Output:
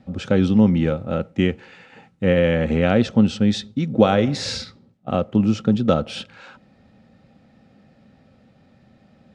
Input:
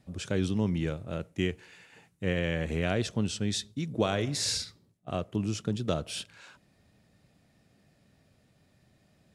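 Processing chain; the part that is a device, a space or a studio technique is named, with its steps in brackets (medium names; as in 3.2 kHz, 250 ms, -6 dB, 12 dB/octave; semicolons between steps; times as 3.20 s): inside a cardboard box (low-pass 4.1 kHz 12 dB/octave; small resonant body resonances 230/520/790/1300 Hz, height 10 dB, ringing for 45 ms); trim +7.5 dB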